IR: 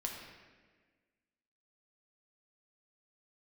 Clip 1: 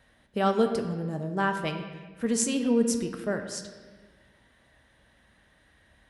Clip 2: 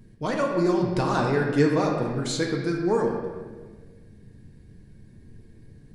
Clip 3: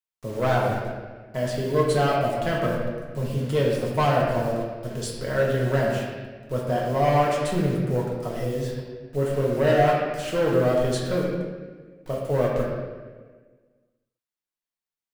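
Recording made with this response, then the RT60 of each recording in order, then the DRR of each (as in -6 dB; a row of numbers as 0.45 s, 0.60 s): 2; 1.5 s, 1.5 s, 1.5 s; 5.0 dB, -0.5 dB, -4.5 dB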